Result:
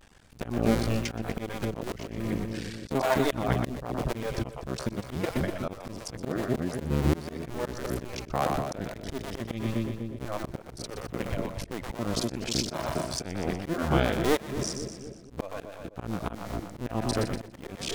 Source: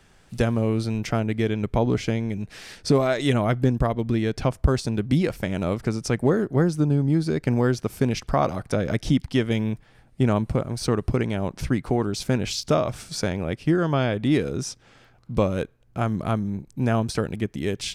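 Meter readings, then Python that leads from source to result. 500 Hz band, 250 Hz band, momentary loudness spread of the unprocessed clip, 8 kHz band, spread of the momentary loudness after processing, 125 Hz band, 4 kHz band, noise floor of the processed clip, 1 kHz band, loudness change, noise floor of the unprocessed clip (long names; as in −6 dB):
−6.5 dB, −8.0 dB, 7 LU, −2.5 dB, 12 LU, −9.0 dB, −3.5 dB, −48 dBFS, −4.0 dB, −7.0 dB, −56 dBFS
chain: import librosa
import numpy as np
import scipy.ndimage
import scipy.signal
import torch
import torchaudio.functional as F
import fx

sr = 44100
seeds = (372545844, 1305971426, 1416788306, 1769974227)

p1 = fx.cycle_switch(x, sr, every=2, mode='muted')
p2 = fx.vibrato(p1, sr, rate_hz=0.33, depth_cents=32.0)
p3 = fx.dereverb_blind(p2, sr, rt60_s=1.3)
p4 = p3 + fx.echo_split(p3, sr, split_hz=550.0, low_ms=247, high_ms=122, feedback_pct=52, wet_db=-8.0, dry=0)
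p5 = fx.auto_swell(p4, sr, attack_ms=251.0)
p6 = fx.hpss(p5, sr, part='percussive', gain_db=-6)
y = F.gain(torch.from_numpy(p6), 6.0).numpy()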